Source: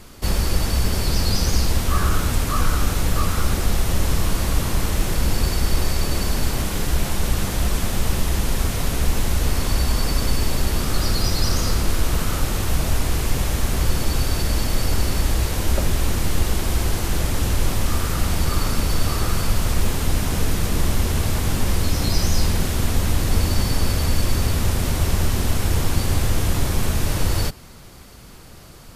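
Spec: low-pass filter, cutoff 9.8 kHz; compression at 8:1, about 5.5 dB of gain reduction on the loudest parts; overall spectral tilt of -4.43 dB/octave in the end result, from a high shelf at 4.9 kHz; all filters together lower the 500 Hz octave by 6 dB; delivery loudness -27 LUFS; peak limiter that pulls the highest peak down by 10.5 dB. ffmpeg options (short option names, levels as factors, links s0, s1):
-af "lowpass=9800,equalizer=f=500:t=o:g=-8,highshelf=f=4900:g=-3.5,acompressor=threshold=0.126:ratio=8,volume=2,alimiter=limit=0.168:level=0:latency=1"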